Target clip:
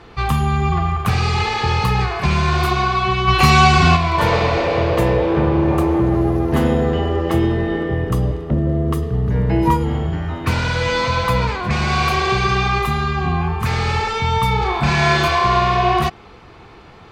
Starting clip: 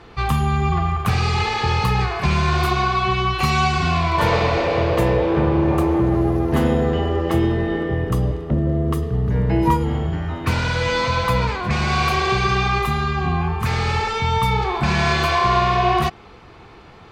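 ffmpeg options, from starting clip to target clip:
-filter_complex "[0:a]asplit=3[a][b][c];[a]afade=t=out:st=3.27:d=0.02[d];[b]acontrast=68,afade=t=in:st=3.27:d=0.02,afade=t=out:st=3.95:d=0.02[e];[c]afade=t=in:st=3.95:d=0.02[f];[d][e][f]amix=inputs=3:normalize=0,asettb=1/sr,asplit=3[g][h][i];[g]atrim=end=14.584[j];[h]atrim=start=14.58:end=15.28,asetpts=PTS-STARTPTS,afade=t=in:d=0.004:c=qsin,afade=t=out:st=0.696:d=0.004:c=qsin,asplit=2[k][l];[l]adelay=35,volume=-5dB[m];[k][m]amix=inputs=2:normalize=0,atrim=end_sample=30870[n];[i]atrim=start=15.276[o];[j][n]acrossfade=d=0.004:c1=hsin:c2=qsin[p];[p][o]acrossfade=d=0.004:c1=qsin:c2=hsin,volume=1.5dB"

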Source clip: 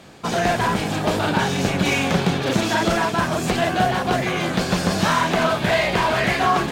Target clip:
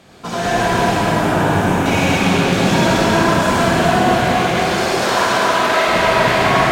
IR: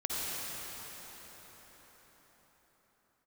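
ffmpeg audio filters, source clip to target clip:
-filter_complex "[0:a]asettb=1/sr,asplit=3[a][b][c];[a]atrim=end=0.944[d];[b]atrim=start=0.94:end=1.86,asetpts=PTS-STARTPTS,afade=t=in:d=0.004:c=qsin,afade=t=out:st=0.916:d=0.004:c=qsin,equalizer=f=4.5k:t=o:w=1.1:g=-14[e];[c]atrim=start=1.856[f];[d][e]acrossfade=d=0.004:c1=hsin:c2=qsin[g];[g][f]acrossfade=d=0.004:c1=qsin:c2=hsin,asettb=1/sr,asplit=3[h][i][j];[h]atrim=end=4.174[k];[i]atrim=start=4.17:end=5.88,asetpts=PTS-STARTPTS,afade=t=in:d=0.004:c=qsin,afade=t=out:st=1.706:d=0.004:c=qsin,highpass=f=320:w=0.5412,highpass=f=320:w=1.3066[l];[j]atrim=start=5.876[m];[k][l]acrossfade=d=0.004:c1=hsin:c2=qsin[n];[n][m]acrossfade=d=0.004:c1=qsin:c2=hsin[o];[1:a]atrim=start_sample=2205[p];[o][p]afir=irnorm=-1:irlink=0,volume=-1dB"

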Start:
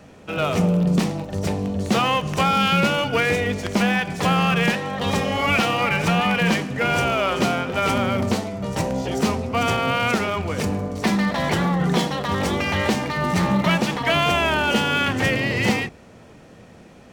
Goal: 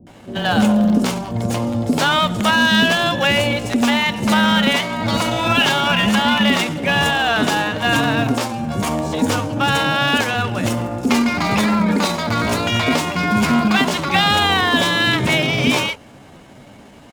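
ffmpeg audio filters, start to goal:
-filter_complex "[0:a]acrossover=split=370[a][b];[b]adelay=80[c];[a][c]amix=inputs=2:normalize=0,asetrate=52444,aresample=44100,atempo=0.840896,volume=4.5dB"

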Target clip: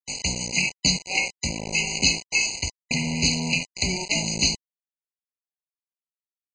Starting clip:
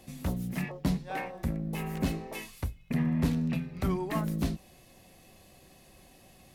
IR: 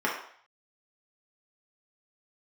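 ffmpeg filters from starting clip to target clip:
-af "aexciter=amount=10.2:drive=5.2:freq=2.1k,aresample=16000,acrusher=bits=4:mix=0:aa=0.000001,aresample=44100,highshelf=f=2.6k:g=8.5,afftfilt=real='re*eq(mod(floor(b*sr/1024/1000),2),0)':imag='im*eq(mod(floor(b*sr/1024/1000),2),0)':win_size=1024:overlap=0.75"

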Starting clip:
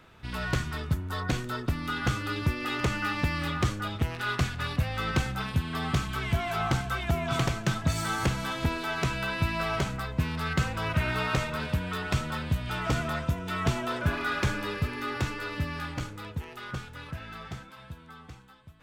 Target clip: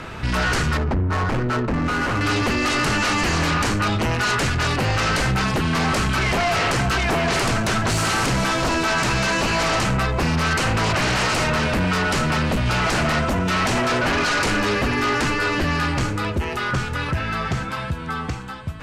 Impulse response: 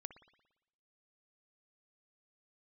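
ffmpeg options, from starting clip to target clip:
-filter_complex "[0:a]asplit=2[a][b];[1:a]atrim=start_sample=2205,asetrate=30429,aresample=44100[c];[b][c]afir=irnorm=-1:irlink=0,volume=-4dB[d];[a][d]amix=inputs=2:normalize=0,aeval=exprs='0.266*sin(PI/2*5.62*val(0)/0.266)':c=same,lowpass=9.5k,alimiter=limit=-16.5dB:level=0:latency=1:release=175,asettb=1/sr,asplit=3[e][f][g];[e]atrim=end=0.774[h];[f]atrim=start=0.77:end=2.21,asetpts=PTS-STARTPTS,afade=t=in:d=0.004:c=qsin,afade=t=out:st=1.436:d=0.004:c=qsin,adynamicsmooth=sensitivity=1:basefreq=590[i];[g]atrim=start=2.206[j];[h][i]acrossfade=d=0.004:c1=hsin:c2=qsin[k];[k][j]acrossfade=d=0.004:c1=qsin:c2=hsin,equalizer=f=3.5k:t=o:w=0.22:g=-6"

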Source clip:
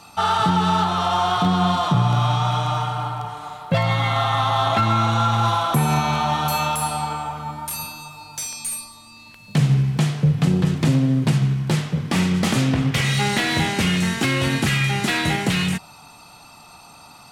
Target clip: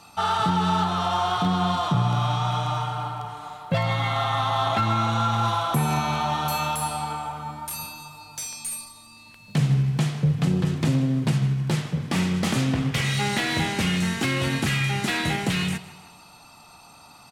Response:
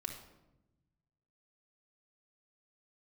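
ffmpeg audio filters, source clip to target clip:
-af "aecho=1:1:156|312|468|624:0.126|0.0592|0.0278|0.0131,volume=-4dB"

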